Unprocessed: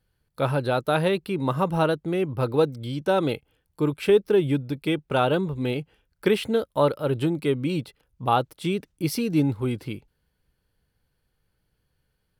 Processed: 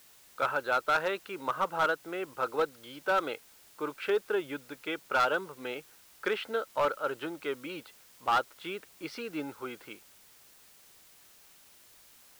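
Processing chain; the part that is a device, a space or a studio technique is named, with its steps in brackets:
drive-through speaker (band-pass filter 540–3,300 Hz; parametric band 1,400 Hz +10.5 dB 0.43 octaves; hard clipping −16.5 dBFS, distortion −13 dB; white noise bed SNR 24 dB)
level −4.5 dB

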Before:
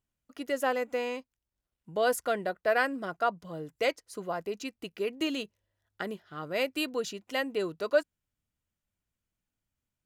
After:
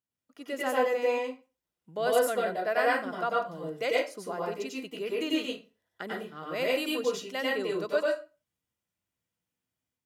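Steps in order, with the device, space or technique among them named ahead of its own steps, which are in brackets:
far laptop microphone (convolution reverb RT60 0.30 s, pre-delay 90 ms, DRR −3.5 dB; high-pass filter 130 Hz 12 dB per octave; automatic gain control gain up to 5 dB)
level −8.5 dB

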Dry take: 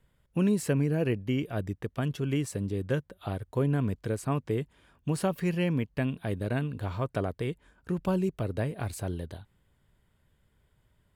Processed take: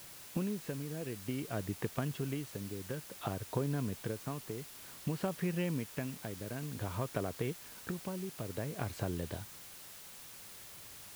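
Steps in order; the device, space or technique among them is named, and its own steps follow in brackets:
medium wave at night (band-pass filter 100–3,700 Hz; downward compressor 5 to 1, threshold −41 dBFS, peak gain reduction 17 dB; amplitude tremolo 0.55 Hz, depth 54%; steady tone 10,000 Hz −72 dBFS; white noise bed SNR 12 dB)
level +8 dB

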